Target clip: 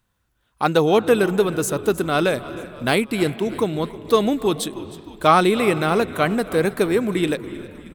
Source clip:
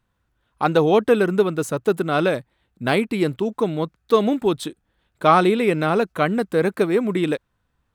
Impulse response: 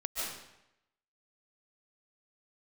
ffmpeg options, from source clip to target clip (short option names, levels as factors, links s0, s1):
-filter_complex "[0:a]highshelf=f=3900:g=10.5,asplit=6[s0][s1][s2][s3][s4][s5];[s1]adelay=313,afreqshift=-59,volume=0.119[s6];[s2]adelay=626,afreqshift=-118,volume=0.0716[s7];[s3]adelay=939,afreqshift=-177,volume=0.0427[s8];[s4]adelay=1252,afreqshift=-236,volume=0.0257[s9];[s5]adelay=1565,afreqshift=-295,volume=0.0155[s10];[s0][s6][s7][s8][s9][s10]amix=inputs=6:normalize=0,asplit=2[s11][s12];[1:a]atrim=start_sample=2205,asetrate=23373,aresample=44100,lowpass=3300[s13];[s12][s13]afir=irnorm=-1:irlink=0,volume=0.0668[s14];[s11][s14]amix=inputs=2:normalize=0,volume=0.891"